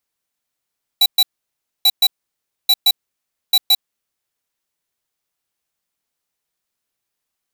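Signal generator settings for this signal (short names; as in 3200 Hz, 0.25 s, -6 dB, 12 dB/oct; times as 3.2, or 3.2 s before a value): beep pattern square 3940 Hz, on 0.05 s, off 0.12 s, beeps 2, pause 0.62 s, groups 4, -11.5 dBFS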